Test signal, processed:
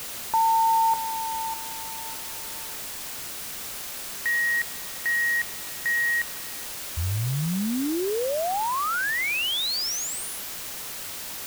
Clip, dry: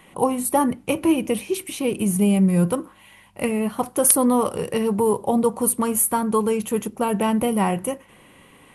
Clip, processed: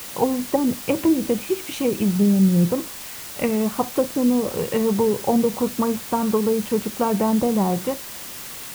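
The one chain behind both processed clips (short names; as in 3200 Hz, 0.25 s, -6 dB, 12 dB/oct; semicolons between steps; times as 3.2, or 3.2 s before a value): treble ducked by the level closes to 410 Hz, closed at -14.5 dBFS; added noise white -37 dBFS; gain +1.5 dB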